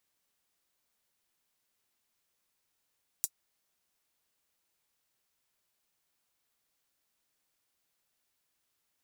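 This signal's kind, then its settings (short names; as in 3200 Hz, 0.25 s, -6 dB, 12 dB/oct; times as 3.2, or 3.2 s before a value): closed hi-hat, high-pass 6900 Hz, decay 0.06 s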